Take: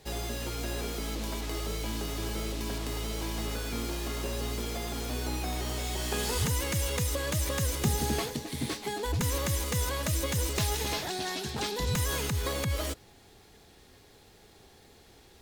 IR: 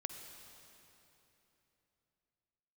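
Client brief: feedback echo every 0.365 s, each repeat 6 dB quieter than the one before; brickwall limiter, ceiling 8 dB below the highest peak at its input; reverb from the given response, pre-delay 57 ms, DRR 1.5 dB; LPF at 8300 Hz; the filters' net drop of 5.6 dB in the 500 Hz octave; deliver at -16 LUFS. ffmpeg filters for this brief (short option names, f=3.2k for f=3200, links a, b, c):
-filter_complex "[0:a]lowpass=8.3k,equalizer=f=500:t=o:g=-7,alimiter=level_in=2dB:limit=-24dB:level=0:latency=1,volume=-2dB,aecho=1:1:365|730|1095|1460|1825|2190:0.501|0.251|0.125|0.0626|0.0313|0.0157,asplit=2[a][b];[1:a]atrim=start_sample=2205,adelay=57[c];[b][c]afir=irnorm=-1:irlink=0,volume=0dB[d];[a][d]amix=inputs=2:normalize=0,volume=15.5dB"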